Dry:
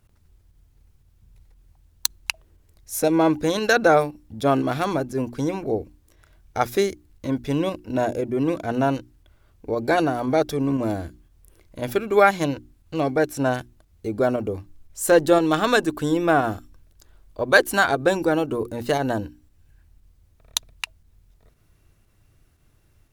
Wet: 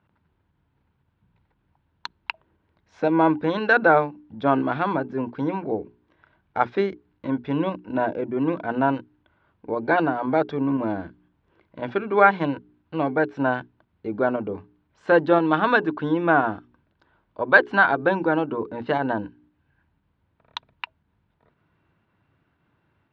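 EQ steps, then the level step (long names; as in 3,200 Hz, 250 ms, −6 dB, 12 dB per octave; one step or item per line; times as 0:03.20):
high-frequency loss of the air 76 metres
loudspeaker in its box 130–3,500 Hz, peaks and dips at 180 Hz +6 dB, 290 Hz +3 dB, 940 Hz +9 dB, 1,500 Hz +6 dB
mains-hum notches 60/120/180/240/300/360/420 Hz
−2.5 dB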